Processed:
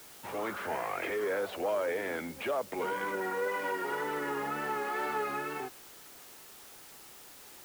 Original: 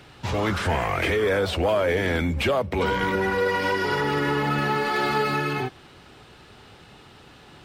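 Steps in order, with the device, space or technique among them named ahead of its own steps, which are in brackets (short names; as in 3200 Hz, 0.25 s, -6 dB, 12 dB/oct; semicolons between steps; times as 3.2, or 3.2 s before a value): wax cylinder (BPF 330–2100 Hz; wow and flutter; white noise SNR 17 dB); gain -8.5 dB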